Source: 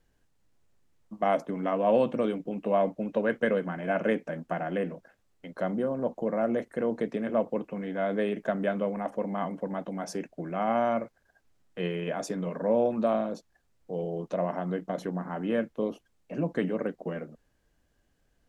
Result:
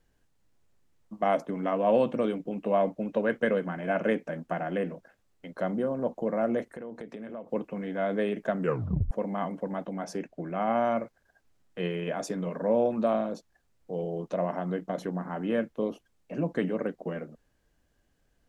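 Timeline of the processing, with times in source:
6.70–7.51 s: compression 4:1, threshold -38 dBFS
8.59 s: tape stop 0.52 s
9.86–10.84 s: treble shelf 5.2 kHz -5.5 dB

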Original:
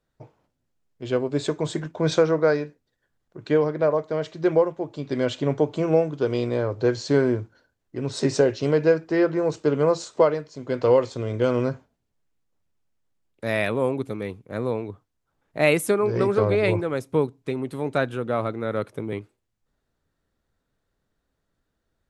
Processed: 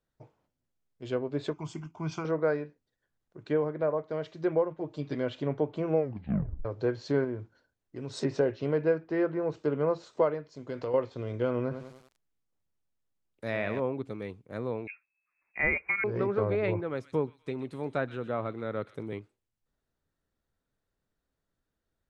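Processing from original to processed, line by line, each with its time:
1.53–2.25 s: static phaser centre 2.6 kHz, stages 8
3.43–4.00 s: treble shelf 4.5 kHz -6 dB
4.70–5.15 s: comb 6.5 ms, depth 73%
5.96 s: tape stop 0.69 s
7.24–8.14 s: compression 1.5:1, threshold -30 dBFS
10.52–10.94 s: compression 4:1, threshold -23 dBFS
11.61–13.80 s: bit-crushed delay 97 ms, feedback 55%, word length 7-bit, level -8 dB
14.87–16.04 s: frequency inversion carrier 2.6 kHz
16.78–19.18 s: feedback echo behind a high-pass 124 ms, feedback 33%, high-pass 2.3 kHz, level -10 dB
whole clip: low-pass that closes with the level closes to 2.5 kHz, closed at -19 dBFS; trim -7.5 dB

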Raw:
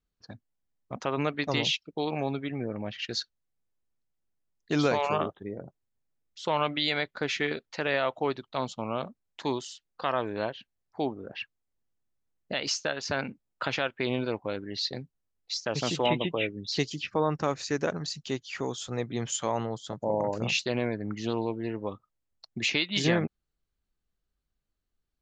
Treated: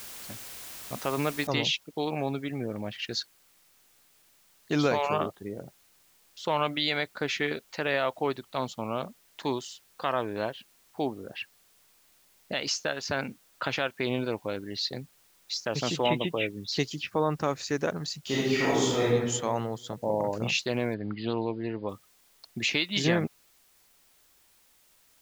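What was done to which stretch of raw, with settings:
1.47 s: noise floor step -43 dB -63 dB
18.21–19.06 s: reverb throw, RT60 1.3 s, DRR -9 dB
20.94–21.89 s: brick-wall FIR low-pass 5 kHz

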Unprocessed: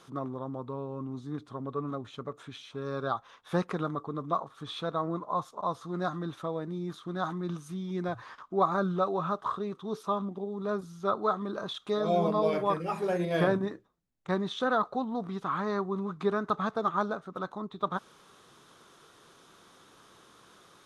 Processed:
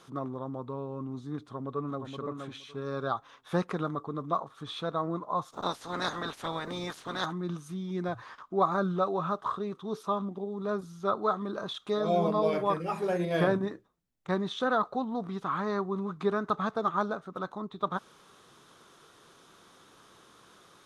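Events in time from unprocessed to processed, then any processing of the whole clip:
1.52–2.09 s: echo throw 470 ms, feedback 15%, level -5.5 dB
5.52–7.24 s: spectral peaks clipped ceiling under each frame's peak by 25 dB

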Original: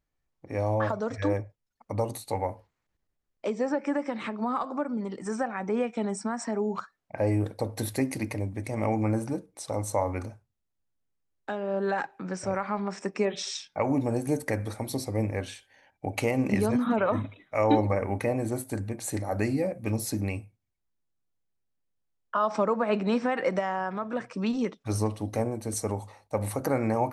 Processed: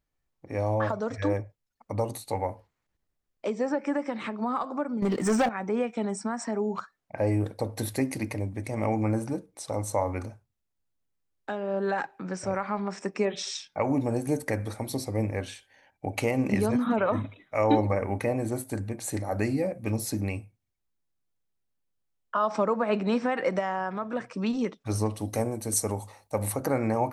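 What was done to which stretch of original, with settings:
5.02–5.49 s: waveshaping leveller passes 3
25.15–26.51 s: treble shelf 5.4 kHz -> 8.1 kHz +11.5 dB

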